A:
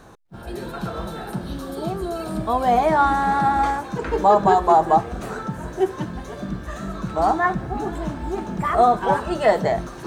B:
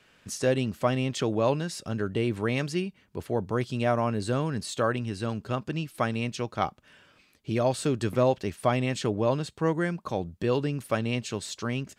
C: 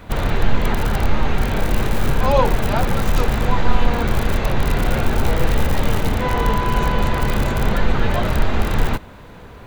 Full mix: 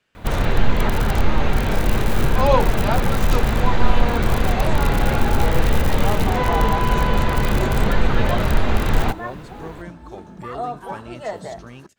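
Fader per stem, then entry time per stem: -12.0 dB, -10.0 dB, 0.0 dB; 1.80 s, 0.00 s, 0.15 s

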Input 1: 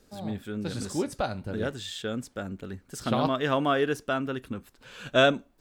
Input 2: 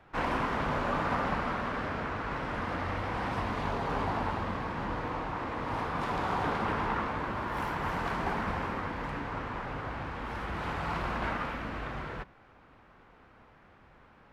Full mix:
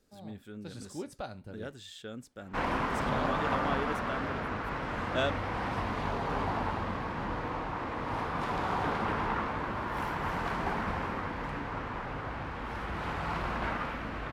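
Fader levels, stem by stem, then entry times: -10.5 dB, -0.5 dB; 0.00 s, 2.40 s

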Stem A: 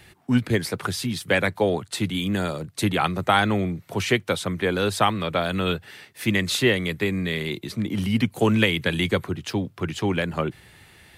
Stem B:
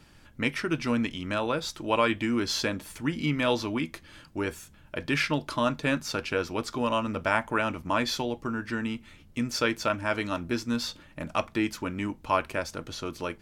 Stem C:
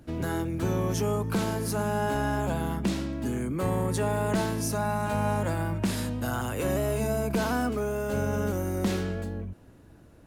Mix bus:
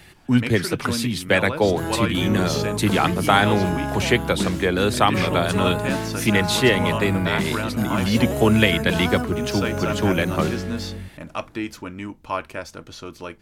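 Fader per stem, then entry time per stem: +2.5 dB, -1.0 dB, +1.5 dB; 0.00 s, 0.00 s, 1.55 s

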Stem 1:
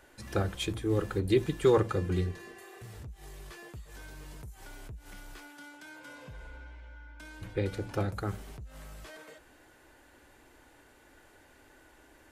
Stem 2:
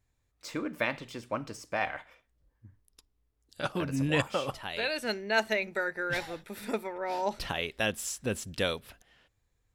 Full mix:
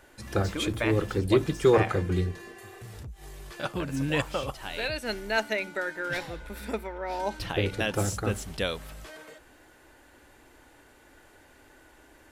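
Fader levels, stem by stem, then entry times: +3.0 dB, 0.0 dB; 0.00 s, 0.00 s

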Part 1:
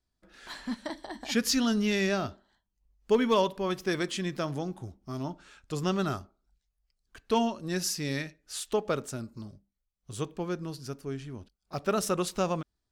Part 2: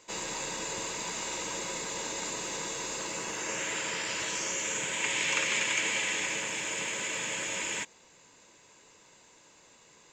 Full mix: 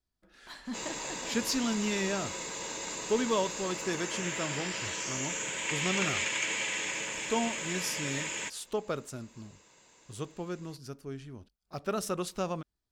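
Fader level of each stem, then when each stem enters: -4.5 dB, -2.5 dB; 0.00 s, 0.65 s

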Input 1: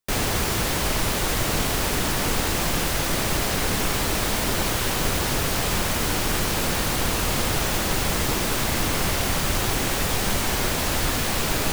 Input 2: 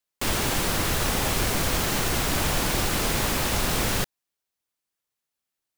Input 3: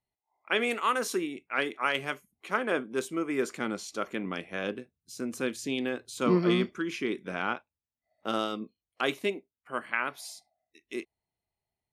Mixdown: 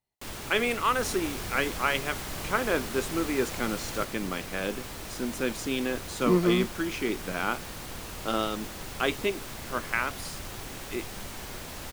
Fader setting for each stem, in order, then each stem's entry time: -16.0 dB, -14.0 dB, +1.5 dB; 0.90 s, 0.00 s, 0.00 s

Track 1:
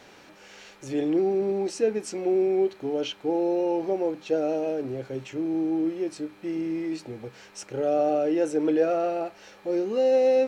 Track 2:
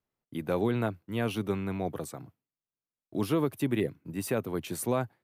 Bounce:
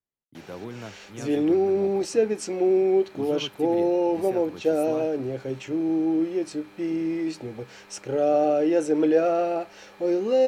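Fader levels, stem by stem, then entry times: +2.5 dB, -9.5 dB; 0.35 s, 0.00 s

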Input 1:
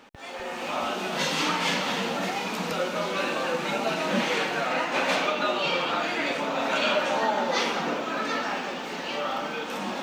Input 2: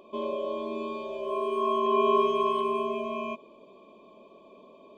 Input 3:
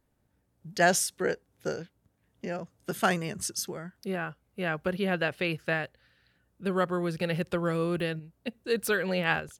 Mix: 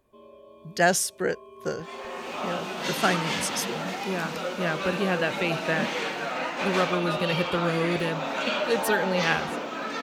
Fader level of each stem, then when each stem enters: -3.5 dB, -18.5 dB, +2.0 dB; 1.65 s, 0.00 s, 0.00 s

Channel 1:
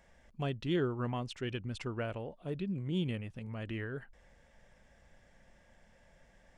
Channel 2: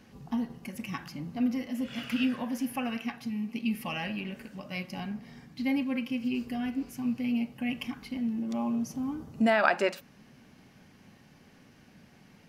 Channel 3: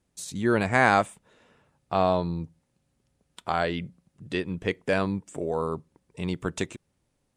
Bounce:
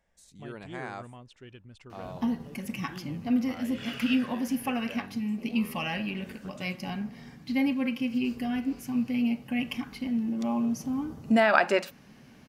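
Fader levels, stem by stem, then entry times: -11.0 dB, +2.5 dB, -19.5 dB; 0.00 s, 1.90 s, 0.00 s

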